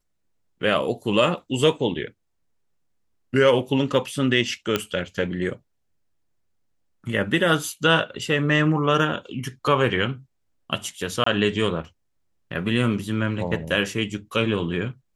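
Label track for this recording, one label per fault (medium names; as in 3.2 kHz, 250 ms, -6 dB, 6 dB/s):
4.760000	4.760000	pop -7 dBFS
11.240000	11.260000	dropout 24 ms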